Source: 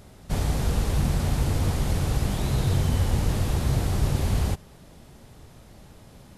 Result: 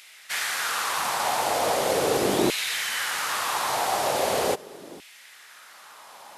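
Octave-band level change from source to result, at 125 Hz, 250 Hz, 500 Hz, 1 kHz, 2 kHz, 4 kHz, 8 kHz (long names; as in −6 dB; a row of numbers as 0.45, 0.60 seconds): −20.0, −2.5, +8.5, +11.5, +11.5, +9.0, +8.0 decibels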